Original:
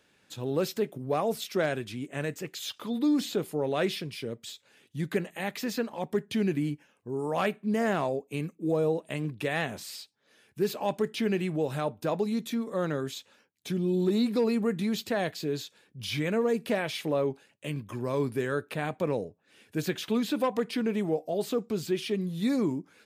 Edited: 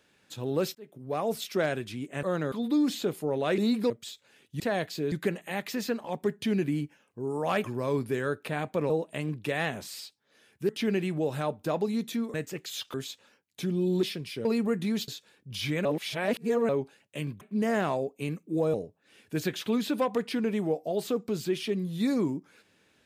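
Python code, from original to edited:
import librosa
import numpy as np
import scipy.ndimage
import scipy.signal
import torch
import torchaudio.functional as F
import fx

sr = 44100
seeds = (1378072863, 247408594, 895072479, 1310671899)

y = fx.edit(x, sr, fx.fade_in_span(start_s=0.75, length_s=0.58),
    fx.swap(start_s=2.23, length_s=0.6, other_s=12.72, other_length_s=0.29),
    fx.swap(start_s=3.89, length_s=0.42, other_s=14.1, other_length_s=0.32),
    fx.swap(start_s=7.53, length_s=1.33, other_s=17.9, other_length_s=1.26),
    fx.cut(start_s=10.65, length_s=0.42),
    fx.move(start_s=15.05, length_s=0.52, to_s=5.01),
    fx.reverse_span(start_s=16.34, length_s=0.84), tone=tone)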